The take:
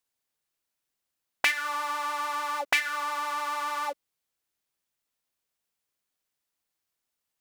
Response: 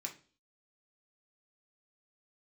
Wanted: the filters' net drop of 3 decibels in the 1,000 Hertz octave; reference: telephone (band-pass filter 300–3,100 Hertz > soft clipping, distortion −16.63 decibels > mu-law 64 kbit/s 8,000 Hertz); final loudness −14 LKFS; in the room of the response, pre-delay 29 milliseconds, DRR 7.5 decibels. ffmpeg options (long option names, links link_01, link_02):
-filter_complex "[0:a]equalizer=frequency=1000:width_type=o:gain=-3.5,asplit=2[link_01][link_02];[1:a]atrim=start_sample=2205,adelay=29[link_03];[link_02][link_03]afir=irnorm=-1:irlink=0,volume=-6dB[link_04];[link_01][link_04]amix=inputs=2:normalize=0,highpass=300,lowpass=3100,asoftclip=threshold=-20dB,volume=17.5dB" -ar 8000 -c:a pcm_mulaw